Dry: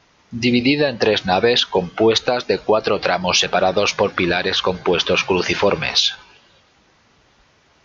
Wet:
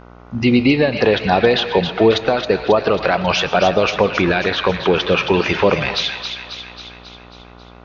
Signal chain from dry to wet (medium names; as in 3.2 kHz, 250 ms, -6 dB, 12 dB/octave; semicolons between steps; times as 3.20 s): tone controls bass +3 dB, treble -14 dB; mains buzz 60 Hz, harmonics 25, -43 dBFS -3 dB/octave; feedback echo behind a high-pass 271 ms, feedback 59%, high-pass 1.5 kHz, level -6.5 dB; reverberation RT60 0.80 s, pre-delay 75 ms, DRR 14 dB; trim +1.5 dB